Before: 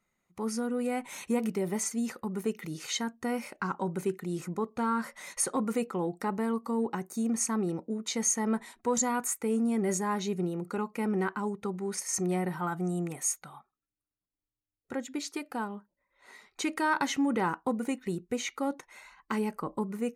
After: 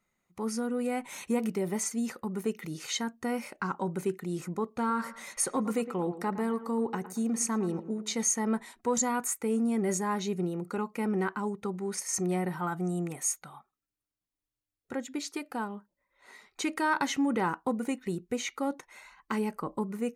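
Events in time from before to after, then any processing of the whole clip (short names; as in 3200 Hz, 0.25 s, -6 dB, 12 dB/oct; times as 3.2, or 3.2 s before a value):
4.67–8.23 dark delay 0.112 s, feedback 30%, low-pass 2500 Hz, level -13 dB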